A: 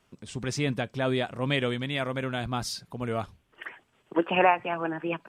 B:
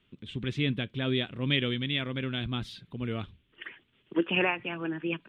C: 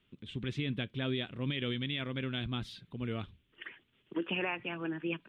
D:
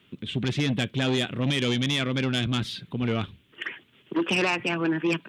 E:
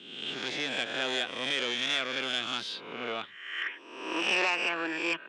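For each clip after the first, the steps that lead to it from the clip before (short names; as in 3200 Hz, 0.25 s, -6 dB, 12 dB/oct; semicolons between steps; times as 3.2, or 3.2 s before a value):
EQ curve 340 Hz 0 dB, 740 Hz -14 dB, 3500 Hz +5 dB, 5100 Hz -20 dB
limiter -21 dBFS, peak gain reduction 9 dB; gain -3.5 dB
in parallel at -6 dB: sine folder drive 7 dB, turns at -24 dBFS; on the sum: HPF 100 Hz; gain +4.5 dB
spectral swells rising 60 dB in 0.95 s; BPF 520–7000 Hz; gain -4 dB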